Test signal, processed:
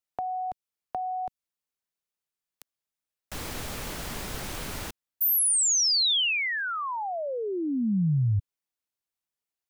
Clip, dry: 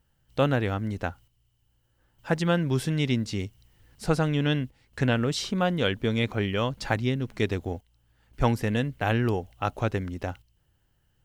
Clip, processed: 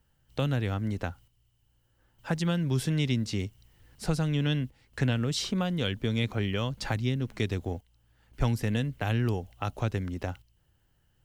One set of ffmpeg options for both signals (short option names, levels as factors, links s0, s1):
-filter_complex "[0:a]acrossover=split=210|3000[s0][s1][s2];[s1]acompressor=threshold=0.0282:ratio=6[s3];[s0][s3][s2]amix=inputs=3:normalize=0"